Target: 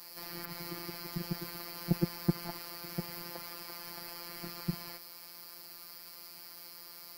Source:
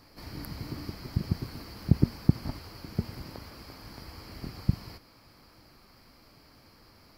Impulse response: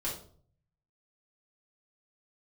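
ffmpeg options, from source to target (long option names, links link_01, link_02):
-filter_complex "[0:a]acrossover=split=2800[link_01][link_02];[link_02]acompressor=threshold=-58dB:ratio=4:attack=1:release=60[link_03];[link_01][link_03]amix=inputs=2:normalize=0,aemphasis=mode=production:type=riaa,afftfilt=real='hypot(re,im)*cos(PI*b)':imag='0':win_size=1024:overlap=0.75,volume=5dB"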